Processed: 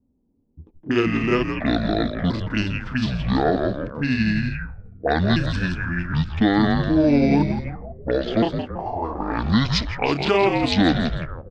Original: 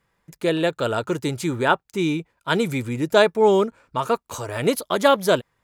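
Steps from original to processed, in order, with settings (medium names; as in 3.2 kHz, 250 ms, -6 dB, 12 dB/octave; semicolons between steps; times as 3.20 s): pitch shift switched off and on +6.5 st, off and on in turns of 375 ms; frequency-shifting echo 81 ms, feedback 49%, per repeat -150 Hz, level -7.5 dB; wide varispeed 0.49×; loudness maximiser +9 dB; touch-sensitive low-pass 260–3900 Hz up, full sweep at -12 dBFS; trim -8 dB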